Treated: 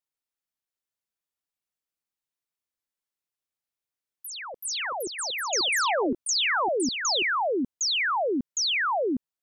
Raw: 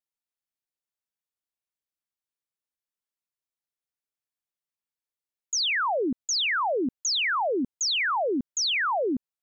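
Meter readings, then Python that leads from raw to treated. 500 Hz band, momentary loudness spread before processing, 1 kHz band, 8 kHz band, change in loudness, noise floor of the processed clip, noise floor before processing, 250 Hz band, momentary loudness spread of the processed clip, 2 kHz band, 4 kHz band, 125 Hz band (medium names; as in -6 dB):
+1.0 dB, 4 LU, +1.0 dB, no reading, 0.0 dB, under -85 dBFS, under -85 dBFS, 0.0 dB, 8 LU, +1.0 dB, +1.0 dB, 0.0 dB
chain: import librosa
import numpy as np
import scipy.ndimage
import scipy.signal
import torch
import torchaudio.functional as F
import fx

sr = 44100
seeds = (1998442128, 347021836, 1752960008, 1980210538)

y = fx.echo_pitch(x, sr, ms=740, semitones=6, count=2, db_per_echo=-6.0)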